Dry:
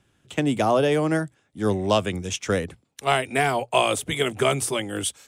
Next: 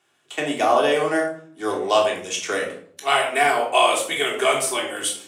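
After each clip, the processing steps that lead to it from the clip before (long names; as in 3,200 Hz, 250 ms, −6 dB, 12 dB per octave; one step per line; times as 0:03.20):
high-pass filter 520 Hz 12 dB per octave
rectangular room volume 720 cubic metres, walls furnished, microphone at 3.4 metres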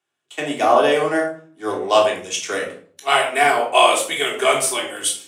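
multiband upward and downward expander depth 40%
level +2.5 dB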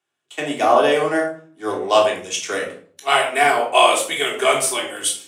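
no processing that can be heard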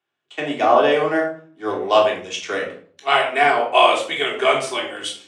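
low-pass filter 4,200 Hz 12 dB per octave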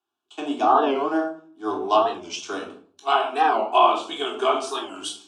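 treble cut that deepens with the level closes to 2,800 Hz, closed at −10 dBFS
phaser with its sweep stopped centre 530 Hz, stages 6
wow of a warped record 45 rpm, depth 160 cents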